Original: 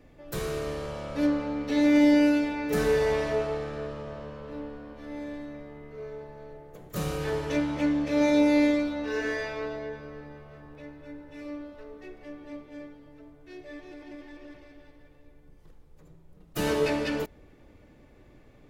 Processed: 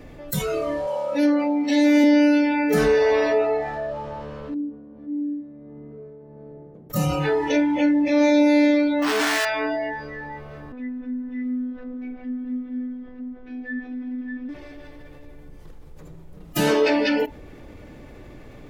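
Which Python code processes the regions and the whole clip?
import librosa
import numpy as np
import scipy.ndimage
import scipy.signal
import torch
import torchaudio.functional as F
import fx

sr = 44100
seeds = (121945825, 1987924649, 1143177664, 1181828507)

y = fx.chain(x, sr, fx.highpass(hz=180.0, slope=12),
    fx.high_shelf(hz=7900.0, db=9.5), at=(0.87, 2.04))
y = fx.chain(y, sr, fx.tremolo(hz=1.5, depth=0.7),
    fx.bandpass_q(hz=220.0, q=1.5), at=(4.54, 6.9))
y = fx.chain(y, sr, fx.schmitt(flips_db=-45.5),
    fx.doppler_dist(depth_ms=0.31), at=(9.02, 9.45))
y = fx.chain(y, sr, fx.lowpass(hz=2500.0, slope=12),
    fx.robotise(hz=250.0), at=(10.72, 14.49))
y = fx.noise_reduce_blind(y, sr, reduce_db=19)
y = fx.env_flatten(y, sr, amount_pct=50)
y = y * 10.0 ** (3.5 / 20.0)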